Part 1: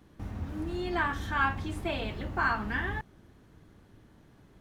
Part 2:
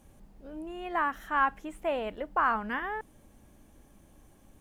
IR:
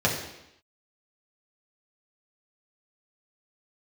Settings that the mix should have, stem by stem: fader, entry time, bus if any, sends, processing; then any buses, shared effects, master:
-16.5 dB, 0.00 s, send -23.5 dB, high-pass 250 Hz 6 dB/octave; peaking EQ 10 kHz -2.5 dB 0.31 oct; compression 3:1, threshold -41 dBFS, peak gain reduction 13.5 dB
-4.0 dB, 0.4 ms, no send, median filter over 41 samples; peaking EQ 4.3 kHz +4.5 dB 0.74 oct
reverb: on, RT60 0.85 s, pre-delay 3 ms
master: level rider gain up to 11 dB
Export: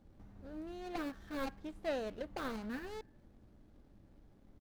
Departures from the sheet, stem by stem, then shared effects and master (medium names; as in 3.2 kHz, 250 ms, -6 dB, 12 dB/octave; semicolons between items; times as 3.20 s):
stem 1: missing high-pass 250 Hz 6 dB/octave; master: missing level rider gain up to 11 dB